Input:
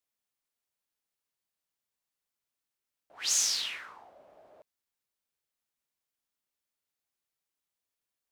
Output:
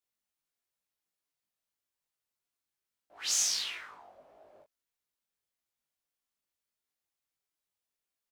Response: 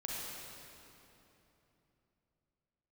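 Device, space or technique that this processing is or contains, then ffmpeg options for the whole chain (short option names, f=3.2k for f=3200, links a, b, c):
double-tracked vocal: -filter_complex "[0:a]asplit=2[a][b];[b]adelay=20,volume=-4dB[c];[a][c]amix=inputs=2:normalize=0,flanger=delay=17:depth=4.6:speed=1.6"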